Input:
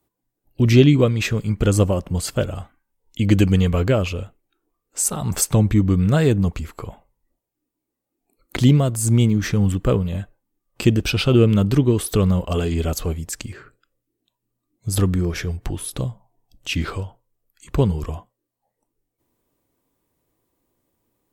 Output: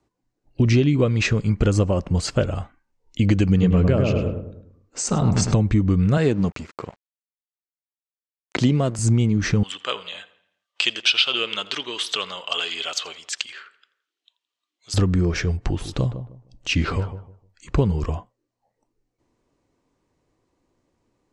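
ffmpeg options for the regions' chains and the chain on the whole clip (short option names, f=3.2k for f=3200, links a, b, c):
-filter_complex "[0:a]asettb=1/sr,asplit=3[a][b][c];[a]atrim=end=3.484[d];[b]atrim=start=3.48:end=5.54,asetpts=PTS-STARTPTS,afade=t=in:d=0.004:c=qsin,afade=t=out:st=2.056:d=0.004:c=qsin,lowpass=f=7.8k:w=0.5412,lowpass=f=7.8k:w=1.3066,equalizer=f=200:w=0.67:g=5.5,asplit=2[e][f];[f]adelay=103,lowpass=f=1.1k:p=1,volume=-3dB,asplit=2[g][h];[h]adelay=103,lowpass=f=1.1k:p=1,volume=0.47,asplit=2[i][j];[j]adelay=103,lowpass=f=1.1k:p=1,volume=0.47,asplit=2[k][l];[l]adelay=103,lowpass=f=1.1k:p=1,volume=0.47,asplit=2[m][n];[n]adelay=103,lowpass=f=1.1k:p=1,volume=0.47,asplit=2[o][p];[p]adelay=103,lowpass=f=1.1k:p=1,volume=0.47[q];[e][g][i][k][m][o][q]amix=inputs=7:normalize=0,atrim=end_sample=90846[r];[c]atrim=start=5.536[s];[d][r]acrossfade=d=0.004:c1=hsin:c2=qsin[t];[t][s]acrossfade=d=0.004:c1=qsin:c2=hsin,asettb=1/sr,asplit=3[u][v][w];[u]atrim=end=6.174[x];[v]atrim=start=6.17:end=8.99,asetpts=PTS-STARTPTS,afade=t=in:d=0.004:c=qsin,afade=t=out:st=2.816:d=0.004:c=qsin,highpass=150,aeval=exprs='sgn(val(0))*max(abs(val(0))-0.00631,0)':c=same[y];[w]atrim=start=8.986[z];[x][y]acrossfade=d=0.004:c1=hsin:c2=qsin[aa];[aa][z]acrossfade=d=0.004:c1=qsin:c2=hsin,asettb=1/sr,asplit=3[ab][ac][ad];[ab]atrim=end=9.634[ae];[ac]atrim=start=9.63:end=14.94,asetpts=PTS-STARTPTS,afade=t=in:d=0.004:c=qsin,afade=t=out:st=5.306:d=0.004:c=qsin,highpass=1.1k,equalizer=f=3.3k:w=2.4:g=14.5,asplit=2[af][ag];[ag]adelay=84,lowpass=f=3.9k:p=1,volume=-18dB,asplit=2[ah][ai];[ai]adelay=84,lowpass=f=3.9k:p=1,volume=0.55,asplit=2[aj][ak];[ak]adelay=84,lowpass=f=3.9k:p=1,volume=0.55,asplit=2[al][am];[am]adelay=84,lowpass=f=3.9k:p=1,volume=0.55,asplit=2[an][ao];[ao]adelay=84,lowpass=f=3.9k:p=1,volume=0.55[ap];[af][ah][aj][al][an][ap]amix=inputs=6:normalize=0,atrim=end_sample=234171[aq];[ad]atrim=start=14.936[ar];[ae][aq]acrossfade=d=0.004:c1=hsin:c2=qsin[as];[as][ar]acrossfade=d=0.004:c1=qsin:c2=hsin,asettb=1/sr,asplit=3[at][au][av];[at]atrim=end=15.574[aw];[au]atrim=start=15.57:end=17.8,asetpts=PTS-STARTPTS,afade=t=in:d=0.004:c=qsin,afade=t=out:st=2.226:d=0.004:c=qsin,lowpass=11k,asplit=2[ax][ay];[ay]adelay=153,lowpass=f=1.2k:p=1,volume=-11dB,asplit=2[az][ba];[ba]adelay=153,lowpass=f=1.2k:p=1,volume=0.24,asplit=2[bb][bc];[bc]adelay=153,lowpass=f=1.2k:p=1,volume=0.24[bd];[ax][az][bb][bd]amix=inputs=4:normalize=0,atrim=end_sample=98343[be];[av]atrim=start=17.796[bf];[aw][be]acrossfade=d=0.004:c1=hsin:c2=qsin[bg];[bg][bf]acrossfade=d=0.004:c1=qsin:c2=hsin,lowpass=f=6.8k:w=0.5412,lowpass=f=6.8k:w=1.3066,equalizer=f=3.4k:t=o:w=0.23:g=-5,acompressor=threshold=-17dB:ratio=6,volume=3dB"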